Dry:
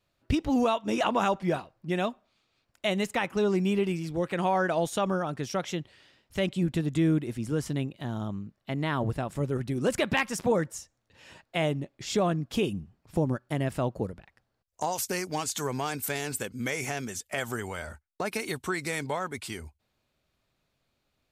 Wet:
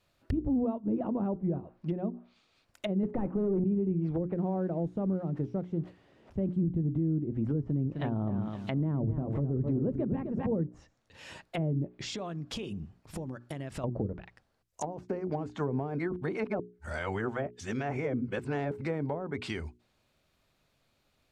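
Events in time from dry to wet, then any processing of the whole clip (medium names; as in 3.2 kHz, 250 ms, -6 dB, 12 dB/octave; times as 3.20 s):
3.03–3.64 s: overdrive pedal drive 24 dB, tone 1.5 kHz, clips at -15 dBFS
4.35–6.62 s: zero-crossing glitches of -21 dBFS
7.60–10.47 s: bit-crushed delay 258 ms, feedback 35%, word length 9-bit, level -8.5 dB
11.91–13.84 s: compression 10:1, threshold -37 dBFS
15.99–18.81 s: reverse
whole clip: low-pass that closes with the level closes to 300 Hz, closed at -25.5 dBFS; hum notches 60/120/180/240/300/360/420 Hz; peak limiter -26 dBFS; trim +4 dB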